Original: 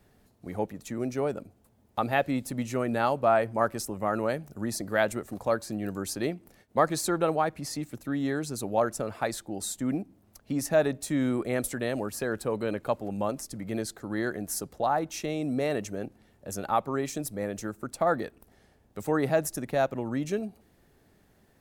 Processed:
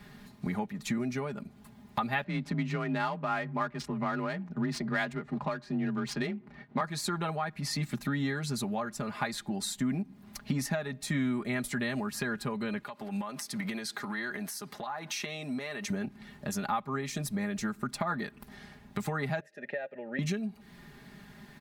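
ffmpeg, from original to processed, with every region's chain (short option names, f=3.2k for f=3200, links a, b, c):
-filter_complex "[0:a]asettb=1/sr,asplit=3[a][b][c];[a]atrim=end=2.244[d];[b]atrim=start=2.24:end=6.81,asetpts=PTS-STARTPTS,afade=t=in:d=0.004:c=qsin,afade=t=out:st=4.566:d=0.004:c=qsin,afreqshift=30,adynamicsmooth=sensitivity=8:basefreq=2.2k[e];[c]atrim=start=6.806[f];[d][e]acrossfade=d=0.004:c1=hsin:c2=qsin[g];[g][f]acrossfade=d=0.004:c1=qsin:c2=hsin,asettb=1/sr,asplit=3[h][i][j];[h]atrim=end=12.834[k];[i]atrim=start=12.83:end=15.9,asetpts=PTS-STARTPTS,afade=t=in:d=0.004:c=qsin,afade=t=out:st=3.066:d=0.004:c=qsin,highpass=f=550:p=1,bandreject=f=7.2k:w=13,acompressor=threshold=-41dB:ratio=12:attack=3.2:release=140:knee=1:detection=peak[l];[j]atrim=start=15.896[m];[k][l]acrossfade=d=0.004:c1=hsin:c2=qsin[n];[n][m]acrossfade=d=0.004:c1=qsin:c2=hsin,asettb=1/sr,asplit=3[o][p][q];[o]atrim=end=19.404[r];[p]atrim=start=19.4:end=20.19,asetpts=PTS-STARTPTS,afade=t=in:d=0.004:c=qsin,afade=t=out:st=0.786:d=0.004:c=qsin,asplit=3[s][t][u];[s]bandpass=f=530:t=q:w=8,volume=0dB[v];[t]bandpass=f=1.84k:t=q:w=8,volume=-6dB[w];[u]bandpass=f=2.48k:t=q:w=8,volume=-9dB[x];[v][w][x]amix=inputs=3:normalize=0,equalizer=f=820:t=o:w=3:g=8.5[y];[q]atrim=start=20.186[z];[r][y]acrossfade=d=0.004:c1=hsin:c2=qsin[aa];[aa][z]acrossfade=d=0.004:c1=qsin:c2=hsin,aecho=1:1:4.9:0.74,acompressor=threshold=-41dB:ratio=4,equalizer=f=125:t=o:w=1:g=11,equalizer=f=250:t=o:w=1:g=6,equalizer=f=500:t=o:w=1:g=-5,equalizer=f=1k:t=o:w=1:g=7,equalizer=f=2k:t=o:w=1:g=9,equalizer=f=4k:t=o:w=1:g=8,volume=3dB"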